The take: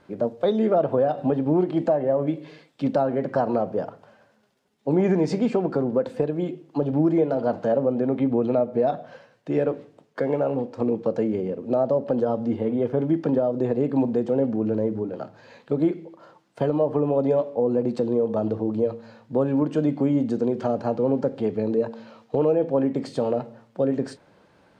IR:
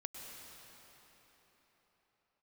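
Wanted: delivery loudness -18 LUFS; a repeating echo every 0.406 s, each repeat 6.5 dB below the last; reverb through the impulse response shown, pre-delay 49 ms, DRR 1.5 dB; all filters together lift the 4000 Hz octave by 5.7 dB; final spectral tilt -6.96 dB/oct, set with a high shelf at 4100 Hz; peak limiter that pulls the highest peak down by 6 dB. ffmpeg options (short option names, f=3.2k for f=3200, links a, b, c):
-filter_complex "[0:a]equalizer=f=4k:t=o:g=3.5,highshelf=f=4.1k:g=6,alimiter=limit=-16.5dB:level=0:latency=1,aecho=1:1:406|812|1218|1624|2030|2436:0.473|0.222|0.105|0.0491|0.0231|0.0109,asplit=2[a][b];[1:a]atrim=start_sample=2205,adelay=49[c];[b][c]afir=irnorm=-1:irlink=0,volume=0.5dB[d];[a][d]amix=inputs=2:normalize=0,volume=5.5dB"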